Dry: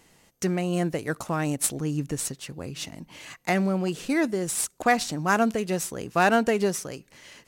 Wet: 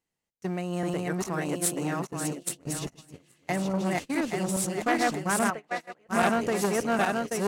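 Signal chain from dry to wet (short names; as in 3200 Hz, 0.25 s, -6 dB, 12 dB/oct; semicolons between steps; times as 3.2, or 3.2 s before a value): regenerating reverse delay 0.415 s, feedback 61%, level 0 dB; 1.27–2.55 HPF 170 Hz 12 dB/oct; 5.5–6.09 three-band isolator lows -15 dB, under 550 Hz, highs -16 dB, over 2800 Hz; gate -26 dBFS, range -24 dB; core saturation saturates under 1100 Hz; gain -4 dB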